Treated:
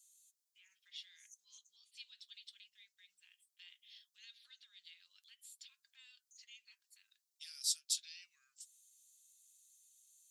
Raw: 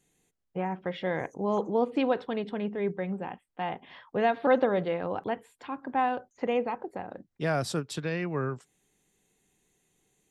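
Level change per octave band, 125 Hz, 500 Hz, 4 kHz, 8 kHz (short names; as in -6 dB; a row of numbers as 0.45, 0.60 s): under -40 dB, under -40 dB, -1.5 dB, n/a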